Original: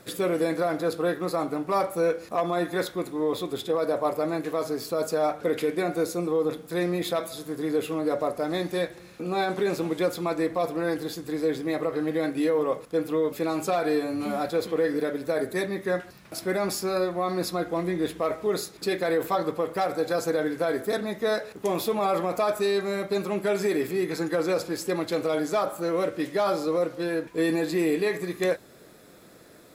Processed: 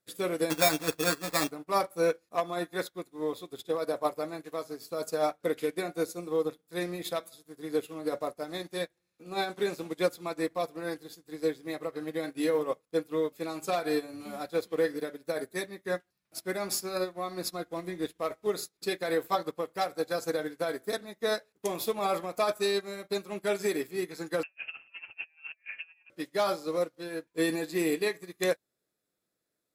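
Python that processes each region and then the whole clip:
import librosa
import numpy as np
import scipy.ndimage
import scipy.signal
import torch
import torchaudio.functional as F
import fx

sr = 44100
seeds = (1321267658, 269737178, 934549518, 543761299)

y = fx.chain(x, sr, fx.peak_eq(hz=2100.0, db=7.5, octaves=0.7),
    fx.comb(ms=6.9, depth=0.7),
    fx.sample_hold(seeds[0], rate_hz=3000.0, jitter_pct=0), at=(0.5, 1.51))
y = fx.chain(y, sr, fx.low_shelf(hz=150.0, db=-8.0),
    fx.over_compress(threshold_db=-33.0, ratio=-0.5),
    fx.freq_invert(carrier_hz=3000), at=(24.43, 26.1))
y = fx.high_shelf(y, sr, hz=2800.0, db=8.5)
y = fx.upward_expand(y, sr, threshold_db=-43.0, expansion=2.5)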